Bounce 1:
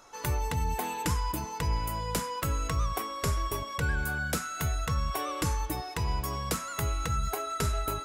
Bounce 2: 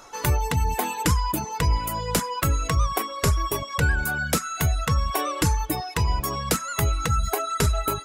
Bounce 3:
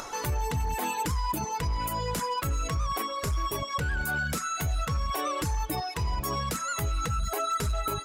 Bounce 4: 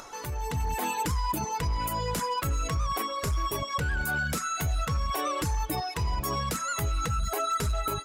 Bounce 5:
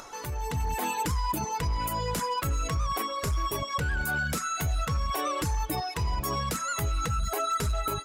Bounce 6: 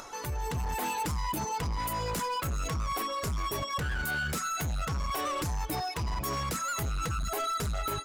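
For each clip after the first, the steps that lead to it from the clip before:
reverb reduction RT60 0.89 s; level +8.5 dB
brickwall limiter −21 dBFS, peak gain reduction 11 dB; upward compression, threshold −32 dBFS; gain into a clipping stage and back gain 23.5 dB
automatic gain control gain up to 6.5 dB; level −6 dB
no processing that can be heard
gain into a clipping stage and back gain 29 dB

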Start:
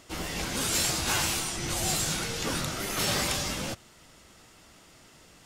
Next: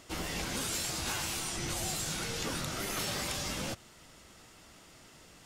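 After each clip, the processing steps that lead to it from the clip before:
downward compressor, threshold −31 dBFS, peak gain reduction 8 dB
level −1 dB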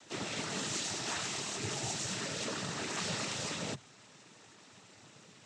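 cochlear-implant simulation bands 12
MP3 64 kbit/s 44,100 Hz

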